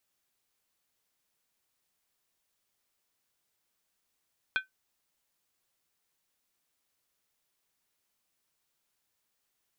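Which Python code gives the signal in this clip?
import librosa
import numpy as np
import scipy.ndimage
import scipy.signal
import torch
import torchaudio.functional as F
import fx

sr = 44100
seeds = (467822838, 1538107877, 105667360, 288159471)

y = fx.strike_skin(sr, length_s=0.63, level_db=-21.5, hz=1530.0, decay_s=0.14, tilt_db=5.5, modes=5)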